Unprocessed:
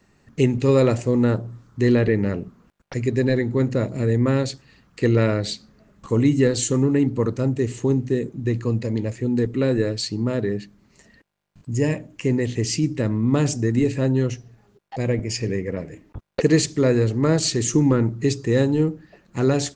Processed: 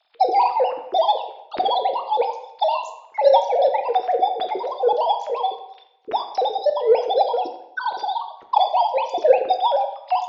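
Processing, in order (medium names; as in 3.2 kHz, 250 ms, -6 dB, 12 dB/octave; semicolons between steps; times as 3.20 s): formants replaced by sine waves; in parallel at -10.5 dB: saturation -13 dBFS, distortion -13 dB; on the sum: tape echo 161 ms, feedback 57%, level -16 dB, low-pass 1.4 kHz; reverberation RT60 1.4 s, pre-delay 8 ms, DRR 7 dB; wide varispeed 1.92×; trim -2 dB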